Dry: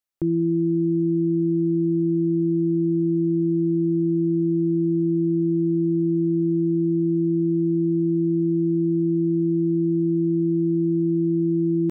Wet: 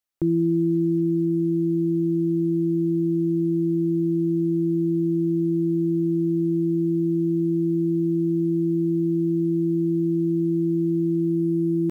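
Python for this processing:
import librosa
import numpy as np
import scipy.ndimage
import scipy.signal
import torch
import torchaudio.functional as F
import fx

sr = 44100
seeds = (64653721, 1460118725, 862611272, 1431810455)

y = fx.rider(x, sr, range_db=10, speed_s=2.0)
y = fx.quant_float(y, sr, bits=6)
y = F.gain(torch.from_numpy(y), -1.0).numpy()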